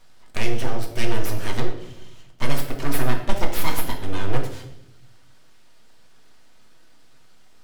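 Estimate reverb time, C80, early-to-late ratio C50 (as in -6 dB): 0.80 s, 10.5 dB, 7.5 dB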